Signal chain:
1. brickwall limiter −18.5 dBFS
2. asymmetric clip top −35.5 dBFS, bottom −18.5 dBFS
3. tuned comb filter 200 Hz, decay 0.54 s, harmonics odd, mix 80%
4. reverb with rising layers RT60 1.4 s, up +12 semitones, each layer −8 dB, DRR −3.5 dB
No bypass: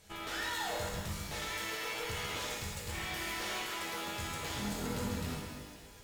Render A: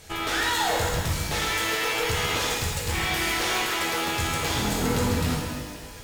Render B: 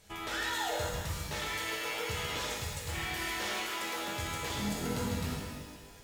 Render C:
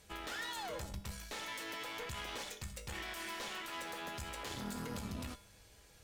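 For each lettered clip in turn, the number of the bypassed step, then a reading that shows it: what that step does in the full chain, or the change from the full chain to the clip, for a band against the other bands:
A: 3, change in integrated loudness +12.5 LU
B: 2, distortion level −8 dB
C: 4, change in integrated loudness −5.5 LU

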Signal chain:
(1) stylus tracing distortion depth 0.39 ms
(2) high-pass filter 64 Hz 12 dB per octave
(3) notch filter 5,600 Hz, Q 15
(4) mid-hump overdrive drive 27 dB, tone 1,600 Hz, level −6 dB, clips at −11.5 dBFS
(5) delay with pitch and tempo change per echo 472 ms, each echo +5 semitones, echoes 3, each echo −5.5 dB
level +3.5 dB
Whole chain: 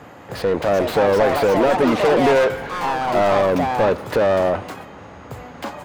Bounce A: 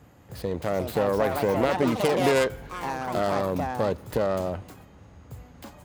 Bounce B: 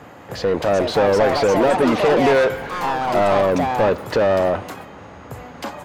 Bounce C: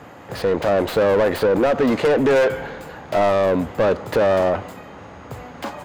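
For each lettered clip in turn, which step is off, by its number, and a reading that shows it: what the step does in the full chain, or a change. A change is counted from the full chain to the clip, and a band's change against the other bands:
4, 8 kHz band +5.0 dB
1, 8 kHz band +1.5 dB
5, 1 kHz band −4.0 dB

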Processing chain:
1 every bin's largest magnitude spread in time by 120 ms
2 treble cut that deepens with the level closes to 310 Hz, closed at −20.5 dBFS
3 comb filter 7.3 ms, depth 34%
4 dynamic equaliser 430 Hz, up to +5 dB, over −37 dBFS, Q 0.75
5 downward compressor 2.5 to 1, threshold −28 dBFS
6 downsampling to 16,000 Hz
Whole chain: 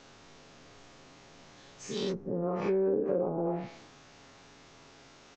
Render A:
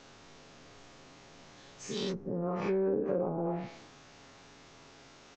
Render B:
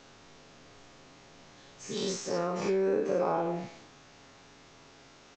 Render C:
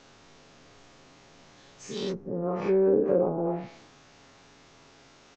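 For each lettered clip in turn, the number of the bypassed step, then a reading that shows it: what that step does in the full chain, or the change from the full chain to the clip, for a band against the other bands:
4, 500 Hz band −2.5 dB
2, 125 Hz band −5.0 dB
5, change in integrated loudness +4.5 LU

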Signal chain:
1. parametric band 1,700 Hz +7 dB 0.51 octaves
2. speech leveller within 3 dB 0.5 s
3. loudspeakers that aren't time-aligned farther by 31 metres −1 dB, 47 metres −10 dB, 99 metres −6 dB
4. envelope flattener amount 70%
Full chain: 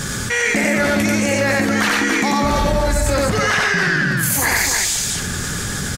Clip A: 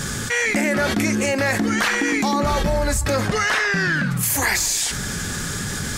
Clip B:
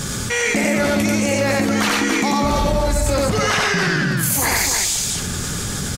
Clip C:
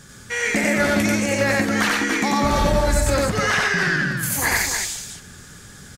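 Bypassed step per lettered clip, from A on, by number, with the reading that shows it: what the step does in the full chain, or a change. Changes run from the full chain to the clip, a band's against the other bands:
3, change in momentary loudness spread +2 LU
1, 2 kHz band −3.5 dB
4, 8 kHz band −2.5 dB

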